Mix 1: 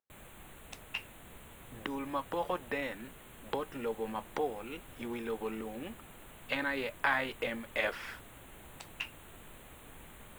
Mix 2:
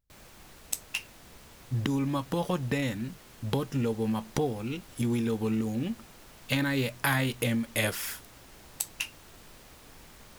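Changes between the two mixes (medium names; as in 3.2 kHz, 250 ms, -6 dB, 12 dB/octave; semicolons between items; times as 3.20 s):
speech: remove band-pass 500–2300 Hz; background: remove Butterworth band-stop 5.2 kHz, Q 1.3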